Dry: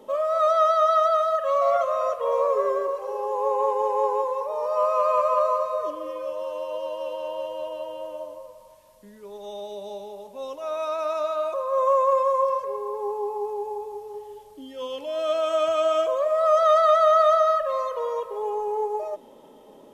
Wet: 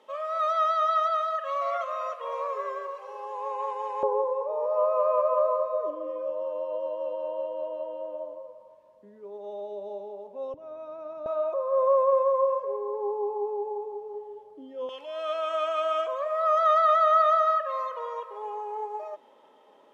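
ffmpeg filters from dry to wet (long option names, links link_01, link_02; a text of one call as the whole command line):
ffmpeg -i in.wav -af "asetnsamples=nb_out_samples=441:pad=0,asendcmd='4.03 bandpass f 480;10.54 bandpass f 160;11.26 bandpass f 500;14.89 bandpass f 1600',bandpass=frequency=2200:width_type=q:width=0.93:csg=0" out.wav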